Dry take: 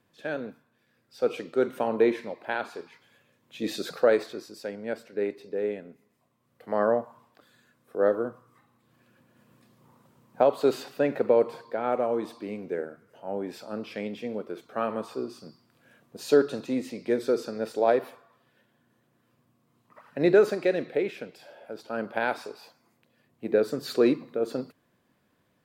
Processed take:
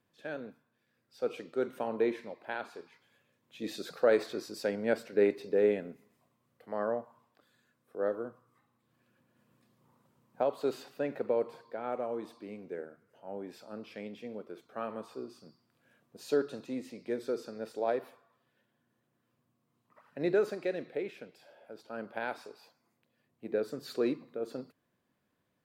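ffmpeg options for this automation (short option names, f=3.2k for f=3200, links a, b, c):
-af "volume=3dB,afade=t=in:st=3.96:d=0.66:silence=0.298538,afade=t=out:st=5.85:d=0.85:silence=0.251189"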